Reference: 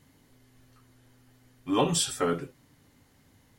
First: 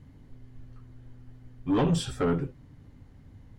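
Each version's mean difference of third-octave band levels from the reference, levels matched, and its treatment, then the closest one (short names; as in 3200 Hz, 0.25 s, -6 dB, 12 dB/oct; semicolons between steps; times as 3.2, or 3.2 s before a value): 6.0 dB: RIAA curve playback; soft clip -19 dBFS, distortion -11 dB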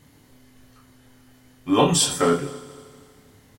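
3.0 dB: doubler 28 ms -4.5 dB; on a send: multi-head echo 79 ms, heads first and third, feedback 58%, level -20.5 dB; on the sum: gain +6 dB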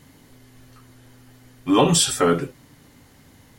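1.5 dB: notches 50/100 Hz; in parallel at 0 dB: limiter -20.5 dBFS, peak gain reduction 8.5 dB; on the sum: gain +4.5 dB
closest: third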